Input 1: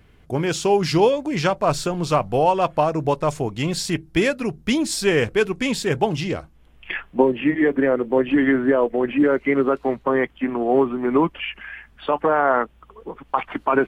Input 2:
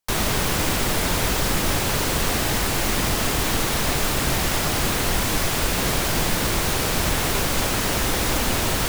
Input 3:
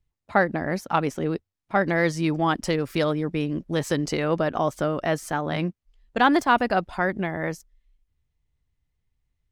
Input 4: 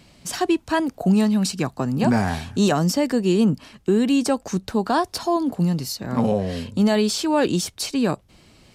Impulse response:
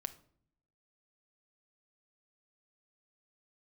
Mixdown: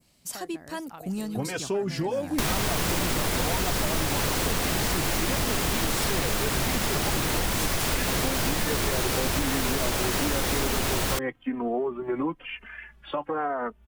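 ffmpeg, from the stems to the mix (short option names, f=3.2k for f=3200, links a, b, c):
-filter_complex "[0:a]asplit=2[a][b];[b]adelay=3.1,afreqshift=-1[c];[a][c]amix=inputs=2:normalize=1,adelay=1050,volume=-0.5dB[d];[1:a]adelay=2300,volume=0.5dB[e];[2:a]aemphasis=mode=production:type=cd,acompressor=threshold=-24dB:ratio=3,volume=-17.5dB[f];[3:a]aemphasis=mode=production:type=50fm,volume=-14dB[g];[d][g]amix=inputs=2:normalize=0,adynamicequalizer=threshold=0.00708:dfrequency=3400:dqfactor=0.75:tfrequency=3400:tqfactor=0.75:attack=5:release=100:ratio=0.375:range=3:mode=cutabove:tftype=bell,alimiter=limit=-19.5dB:level=0:latency=1:release=244,volume=0dB[h];[e][f][h]amix=inputs=3:normalize=0,acompressor=threshold=-22dB:ratio=6"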